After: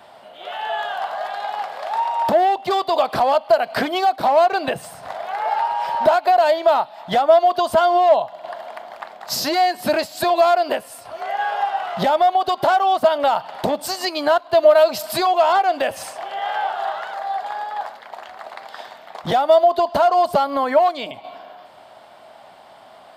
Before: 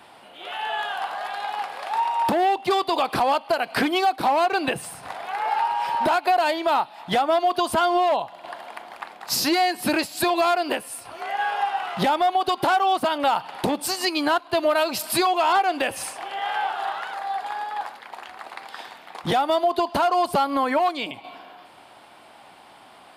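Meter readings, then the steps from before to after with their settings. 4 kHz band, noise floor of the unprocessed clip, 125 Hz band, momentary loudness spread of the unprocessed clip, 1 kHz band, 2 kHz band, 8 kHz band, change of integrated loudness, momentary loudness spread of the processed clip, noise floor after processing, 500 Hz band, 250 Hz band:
0.0 dB, −49 dBFS, +1.0 dB, 16 LU, +3.5 dB, 0.0 dB, −2.0 dB, +4.5 dB, 18 LU, −45 dBFS, +7.5 dB, −2.0 dB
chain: thirty-one-band graphic EQ 315 Hz −6 dB, 630 Hz +10 dB, 2,500 Hz −5 dB, 10,000 Hz −9 dB
level +1 dB

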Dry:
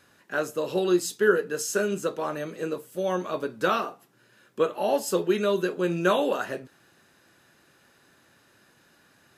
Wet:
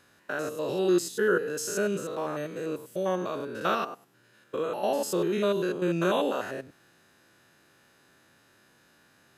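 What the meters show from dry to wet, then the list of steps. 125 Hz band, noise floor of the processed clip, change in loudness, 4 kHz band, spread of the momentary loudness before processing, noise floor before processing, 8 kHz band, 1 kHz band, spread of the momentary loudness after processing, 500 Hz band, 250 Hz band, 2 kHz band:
−0.5 dB, −62 dBFS, −2.5 dB, −2.5 dB, 9 LU, −61 dBFS, −2.5 dB, −2.5 dB, 9 LU, −2.5 dB, −1.0 dB, −3.5 dB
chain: spectrum averaged block by block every 100 ms

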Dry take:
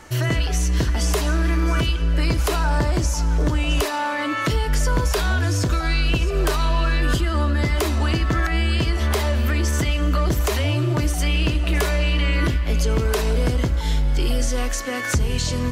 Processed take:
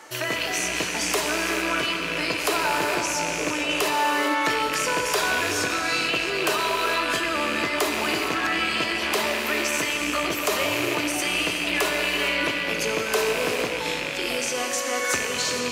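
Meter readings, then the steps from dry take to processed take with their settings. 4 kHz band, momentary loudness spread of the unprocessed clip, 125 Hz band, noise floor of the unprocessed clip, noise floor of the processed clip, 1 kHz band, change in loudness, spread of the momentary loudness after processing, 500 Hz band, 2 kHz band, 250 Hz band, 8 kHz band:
+3.0 dB, 2 LU, −21.5 dB, −25 dBFS, −29 dBFS, +2.5 dB, −2.0 dB, 3 LU, +0.5 dB, +4.0 dB, −4.5 dB, +2.5 dB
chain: loose part that buzzes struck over −18 dBFS, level −16 dBFS
high-pass filter 400 Hz 12 dB per octave
reverb whose tail is shaped and stops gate 490 ms flat, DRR 1.5 dB

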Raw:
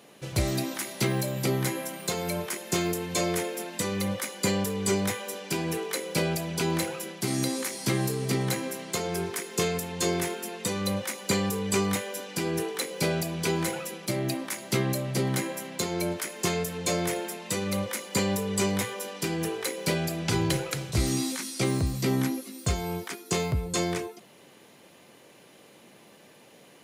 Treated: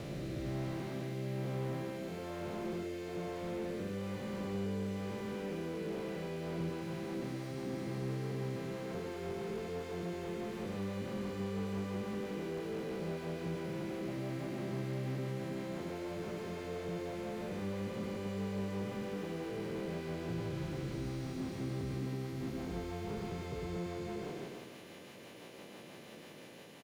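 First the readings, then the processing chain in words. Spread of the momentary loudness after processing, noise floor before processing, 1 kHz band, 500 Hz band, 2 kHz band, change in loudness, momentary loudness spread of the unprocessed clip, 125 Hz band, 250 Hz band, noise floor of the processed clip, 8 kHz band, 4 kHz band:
4 LU, −54 dBFS, −12.0 dB, −9.0 dB, −14.0 dB, −11.0 dB, 5 LU, −9.0 dB, −8.5 dB, −52 dBFS, −25.0 dB, −18.0 dB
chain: spectrum smeared in time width 612 ms
parametric band 9,000 Hz −5.5 dB 0.84 octaves
downward compressor 6 to 1, threshold −41 dBFS, peak gain reduction 13.5 dB
rotating-speaker cabinet horn 1.1 Hz, later 6 Hz, at 0:06.02
on a send: single-tap delay 101 ms −4 dB
on the sum: slew-rate limiting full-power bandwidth 4.6 Hz
level +5 dB

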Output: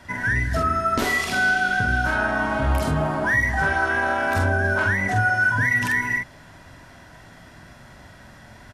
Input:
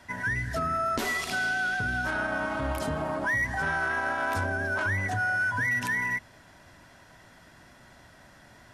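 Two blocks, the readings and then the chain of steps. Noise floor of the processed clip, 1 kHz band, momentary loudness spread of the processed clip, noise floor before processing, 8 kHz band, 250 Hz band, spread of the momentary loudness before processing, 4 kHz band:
−47 dBFS, +7.0 dB, 4 LU, −55 dBFS, +5.0 dB, +8.0 dB, 4 LU, +6.0 dB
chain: bass and treble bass +4 dB, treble −2 dB
double-tracking delay 46 ms −3 dB
level +5 dB

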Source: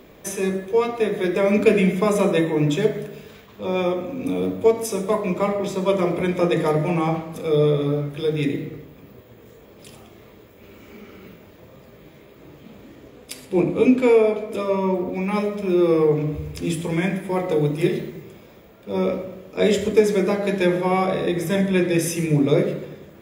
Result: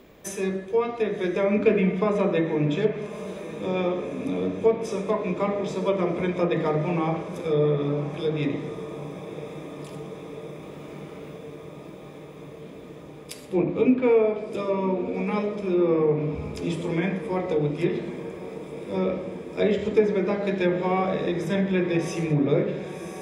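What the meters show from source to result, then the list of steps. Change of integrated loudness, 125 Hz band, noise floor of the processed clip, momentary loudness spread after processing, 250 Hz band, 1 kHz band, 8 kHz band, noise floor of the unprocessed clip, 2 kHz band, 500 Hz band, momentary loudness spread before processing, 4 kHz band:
−4.0 dB, −3.5 dB, −42 dBFS, 18 LU, −3.5 dB, −3.5 dB, can't be measured, −48 dBFS, −4.5 dB, −3.5 dB, 10 LU, −6.0 dB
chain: feedback delay with all-pass diffusion 1,127 ms, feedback 76%, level −14 dB
treble cut that deepens with the level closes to 2,600 Hz, closed at −14 dBFS
level −4 dB

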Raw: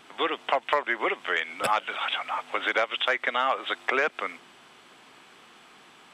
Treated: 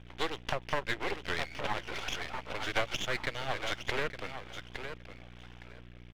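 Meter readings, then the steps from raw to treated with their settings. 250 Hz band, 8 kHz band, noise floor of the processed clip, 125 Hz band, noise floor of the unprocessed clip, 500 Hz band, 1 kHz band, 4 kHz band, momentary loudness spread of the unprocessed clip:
−3.5 dB, +1.0 dB, −51 dBFS, can't be measured, −54 dBFS, −7.5 dB, −10.5 dB, −6.0 dB, 5 LU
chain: repeating echo 863 ms, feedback 19%, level −9 dB
downsampling to 8,000 Hz
rotating-speaker cabinet horn 7.5 Hz, later 1.1 Hz, at 0:02.58
parametric band 1,200 Hz −9 dB 0.27 octaves
mains hum 60 Hz, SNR 15 dB
parametric band 130 Hz +4.5 dB 0.77 octaves
half-wave rectification
highs frequency-modulated by the lows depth 0.26 ms

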